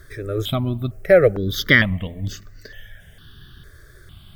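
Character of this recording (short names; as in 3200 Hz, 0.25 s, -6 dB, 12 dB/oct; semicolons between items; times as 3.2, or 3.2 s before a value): a quantiser's noise floor 12-bit, dither triangular; notches that jump at a steady rate 2.2 Hz 790–3200 Hz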